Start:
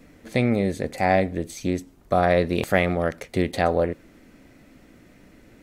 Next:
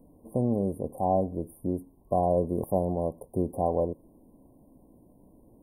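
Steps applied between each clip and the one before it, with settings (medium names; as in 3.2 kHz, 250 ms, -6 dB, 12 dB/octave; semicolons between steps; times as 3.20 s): FFT band-reject 1.1–8.7 kHz; trim -5 dB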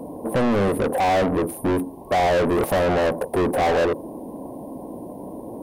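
overdrive pedal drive 37 dB, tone 2.7 kHz, clips at -12.5 dBFS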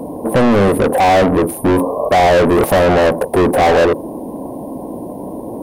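spectral replace 1.78–2.06 s, 410–1200 Hz; trim +8.5 dB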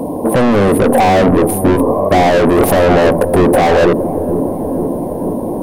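peak limiter -12 dBFS, peak gain reduction 8 dB; on a send: feedback echo behind a low-pass 468 ms, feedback 69%, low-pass 430 Hz, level -5.5 dB; on the sum: trim +6 dB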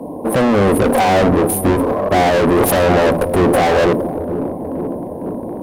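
one-sided clip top -12 dBFS; three bands expanded up and down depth 70%; trim -1 dB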